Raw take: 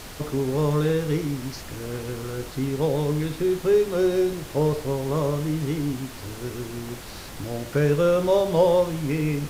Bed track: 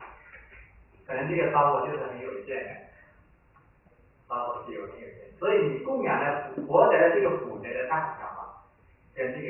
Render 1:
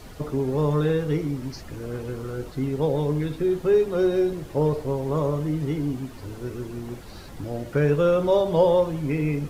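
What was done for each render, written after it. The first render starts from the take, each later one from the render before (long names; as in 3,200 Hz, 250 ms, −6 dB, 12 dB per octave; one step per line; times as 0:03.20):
broadband denoise 10 dB, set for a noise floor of −39 dBFS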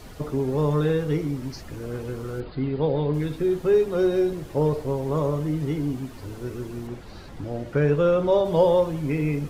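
0:02.40–0:03.14: linear-phase brick-wall low-pass 5,000 Hz
0:06.87–0:08.45: high-shelf EQ 7,400 Hz −11.5 dB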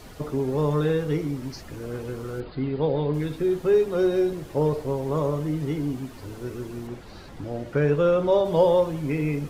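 low-shelf EQ 140 Hz −3.5 dB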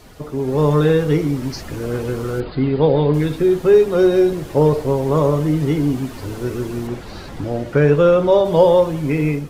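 automatic gain control gain up to 10 dB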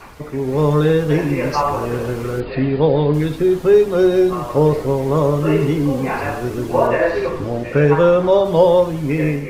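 mix in bed track +3.5 dB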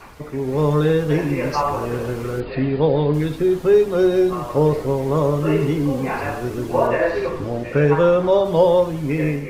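level −2.5 dB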